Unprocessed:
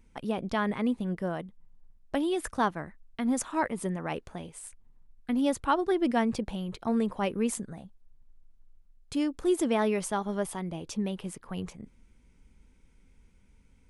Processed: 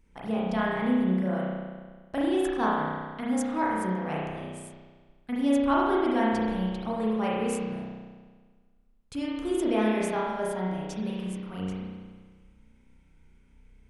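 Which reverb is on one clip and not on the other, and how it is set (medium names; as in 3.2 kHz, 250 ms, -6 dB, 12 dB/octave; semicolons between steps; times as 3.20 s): spring tank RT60 1.5 s, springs 32 ms, chirp 50 ms, DRR -6 dB; trim -4.5 dB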